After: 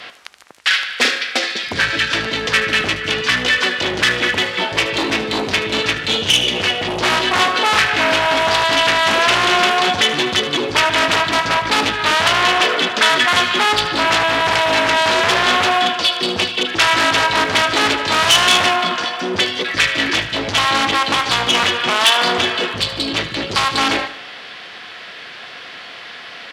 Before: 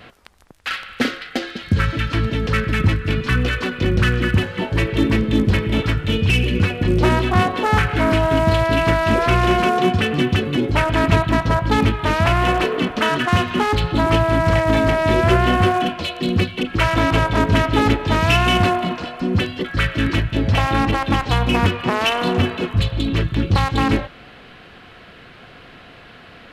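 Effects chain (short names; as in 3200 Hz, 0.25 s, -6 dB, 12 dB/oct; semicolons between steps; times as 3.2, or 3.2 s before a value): LPF 7900 Hz 12 dB/oct; formant shift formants +2 st; in parallel at -7 dB: sine folder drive 13 dB, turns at -1.5 dBFS; on the sum: HPF 1400 Hz 6 dB/oct; on a send: feedback echo 76 ms, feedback 44%, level -13.5 dB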